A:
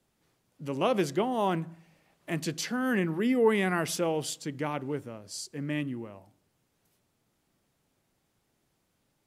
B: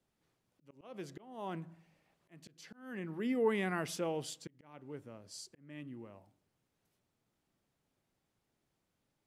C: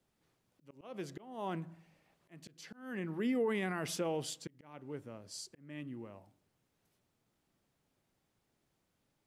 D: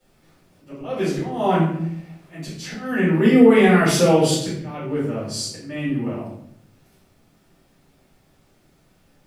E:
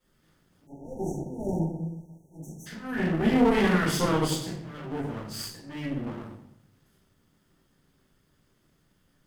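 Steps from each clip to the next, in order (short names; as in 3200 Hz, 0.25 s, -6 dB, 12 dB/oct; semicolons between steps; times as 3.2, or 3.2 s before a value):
high shelf 7600 Hz -5.5 dB; auto swell 0.606 s; gain -7.5 dB
limiter -28.5 dBFS, peak gain reduction 8.5 dB; gain +2.5 dB
reverb RT60 0.70 s, pre-delay 4 ms, DRR -11 dB; gain +6 dB
minimum comb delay 0.62 ms; spectral delete 0.67–2.66, 940–5500 Hz; gain -7.5 dB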